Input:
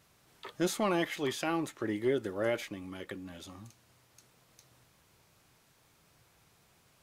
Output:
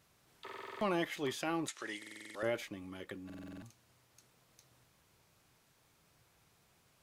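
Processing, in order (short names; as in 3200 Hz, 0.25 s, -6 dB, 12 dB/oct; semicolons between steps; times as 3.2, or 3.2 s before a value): 1.68–2.43 weighting filter ITU-R 468; stuck buffer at 0.44/1.98/3.25, samples 2048, times 7; gain -4 dB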